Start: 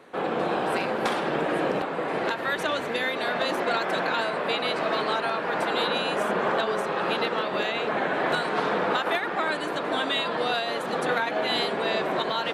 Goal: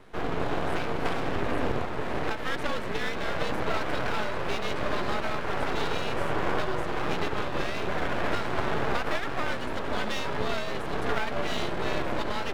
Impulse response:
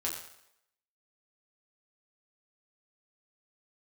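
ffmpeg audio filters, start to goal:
-filter_complex "[0:a]acrossover=split=3400[link_01][link_02];[link_02]acompressor=threshold=-47dB:ratio=4:attack=1:release=60[link_03];[link_01][link_03]amix=inputs=2:normalize=0,afreqshift=-56,aeval=exprs='max(val(0),0)':channel_layout=same,lowshelf=frequency=150:gain=6"

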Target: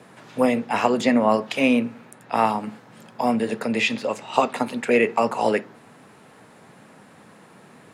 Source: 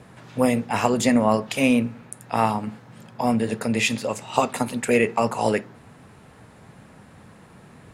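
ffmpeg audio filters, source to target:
ffmpeg -i in.wav -filter_complex "[0:a]highpass=210,acrossover=split=390|5000[link_01][link_02][link_03];[link_03]acompressor=threshold=-49dB:ratio=6[link_04];[link_01][link_02][link_04]amix=inputs=3:normalize=0,volume=1.5dB" out.wav

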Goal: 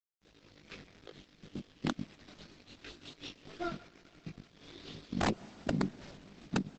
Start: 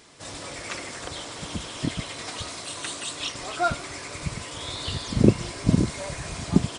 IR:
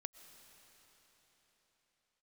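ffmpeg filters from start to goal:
-filter_complex "[0:a]highpass=frequency=180:width=0.5412,highpass=frequency=180:width=1.3066,aeval=exprs='sgn(val(0))*max(abs(val(0))-0.0224,0)':channel_layout=same,equalizer=frequency=860:width=0.88:gain=-14.5,asplit=2[link_01][link_02];[link_02]adelay=20,volume=-2.5dB[link_03];[link_01][link_03]amix=inputs=2:normalize=0,asplit=2[link_04][link_05];[link_05]adelay=140,highpass=300,lowpass=3400,asoftclip=type=hard:threshold=-15.5dB,volume=-25dB[link_06];[link_04][link_06]amix=inputs=2:normalize=0,acompressor=threshold=-31dB:ratio=5,flanger=delay=17.5:depth=4.1:speed=2.8,lowpass=frequency=5300:width=0.5412,lowpass=frequency=5300:width=1.3066,tiltshelf=frequency=1300:gain=6,aeval=exprs='(mod(11.9*val(0)+1,2)-1)/11.9':channel_layout=same,asplit=2[link_07][link_08];[1:a]atrim=start_sample=2205[link_09];[link_08][link_09]afir=irnorm=-1:irlink=0,volume=-1.5dB[link_10];[link_07][link_10]amix=inputs=2:normalize=0,volume=-3dB" -ar 48000 -c:a libopus -b:a 12k

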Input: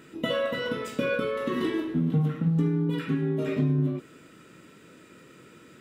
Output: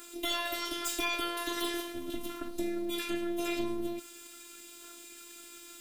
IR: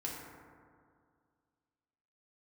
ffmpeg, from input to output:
-filter_complex "[0:a]asettb=1/sr,asplit=3[link_01][link_02][link_03];[link_01]atrim=end=1.484[link_04];[link_02]atrim=start=1.48:end=2.08,asetpts=PTS-STARTPTS,afade=type=in:duration=0.004:curve=qsin,afade=type=out:start_time=0.596:duration=0.004:curve=qsin,aecho=1:1:1.7:0.62,atrim=end_sample=26460[link_05];[link_03]atrim=start=2.076[link_06];[link_04][link_05]acrossfade=duration=0.004:curve1=hsin:curve2=qsin[link_07];[link_07][link_06]acrossfade=duration=0.004:curve1=qsin:curve2=hsin,acrossover=split=610|2200[link_08][link_09][link_10];[link_09]aphaser=in_gain=1:out_gain=1:delay=3.8:decay=0.73:speed=0.41:type=sinusoidal[link_11];[link_10]crystalizer=i=9.5:c=0[link_12];[link_08][link_11][link_12]amix=inputs=3:normalize=0,afftfilt=real='hypot(re,im)*cos(PI*b)':imag='0':win_size=512:overlap=0.75,asoftclip=type=tanh:threshold=-19.5dB,aeval=exprs='0.106*(cos(1*acos(clip(val(0)/0.106,-1,1)))-cos(1*PI/2))+0.0473*(cos(2*acos(clip(val(0)/0.106,-1,1)))-cos(2*PI/2))':channel_layout=same,volume=-3.5dB"

